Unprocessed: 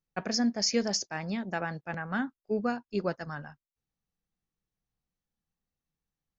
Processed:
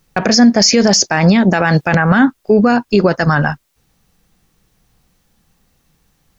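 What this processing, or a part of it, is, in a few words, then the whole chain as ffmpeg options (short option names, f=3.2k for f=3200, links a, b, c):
loud club master: -filter_complex "[0:a]acompressor=threshold=-33dB:ratio=2,asoftclip=type=hard:threshold=-20.5dB,alimiter=level_in=31dB:limit=-1dB:release=50:level=0:latency=1,asettb=1/sr,asplit=3[a][b][c];[a]atrim=end=1.484[d];[b]atrim=start=1.48:end=1.96,asetpts=PTS-STARTPTS,afade=t=in:d=0.004:c=qsin,afade=t=out:st=0.476:d=0.004:c=qsin,adynamicequalizer=threshold=0.0447:dfrequency=2200:dqfactor=0.7:tfrequency=2200:tqfactor=0.7:attack=5:release=100:ratio=0.375:range=2.5:mode=boostabove:tftype=highshelf[e];[c]atrim=start=1.956[f];[d][e]acrossfade=d=0.004:c1=hsin:c2=qsin[g];[g][f]acrossfade=d=0.004:c1=qsin:c2=hsin,volume=-1dB"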